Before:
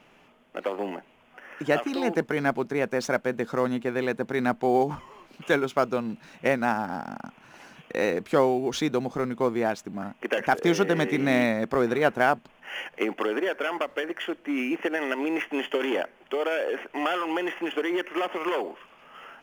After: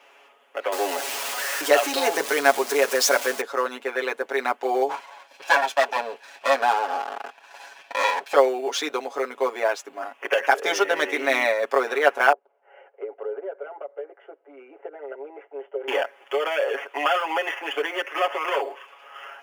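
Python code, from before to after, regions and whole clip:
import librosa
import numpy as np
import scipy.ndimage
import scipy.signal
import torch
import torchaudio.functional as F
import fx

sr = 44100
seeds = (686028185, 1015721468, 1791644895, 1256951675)

y = fx.chain(x, sr, fx.zero_step(step_db=-31.0),
    fx.bass_treble(bass_db=7, treble_db=8), at=(0.72, 3.41))
y = fx.chain(y, sr, fx.lower_of_two(delay_ms=1.2),
    fx.high_shelf(hz=9700.0, db=-5.5),
    fx.leveller(passes=1), at=(4.89, 8.34))
y = fx.chain(y, sr, fx.ladder_bandpass(hz=440.0, resonance_pct=65),
    fx.comb(ms=1.4, depth=0.42), at=(12.32, 15.88))
y = scipy.signal.sosfilt(scipy.signal.butter(4, 450.0, 'highpass', fs=sr, output='sos'), y)
y = y + 0.96 * np.pad(y, (int(7.2 * sr / 1000.0), 0))[:len(y)]
y = y * 10.0 ** (2.5 / 20.0)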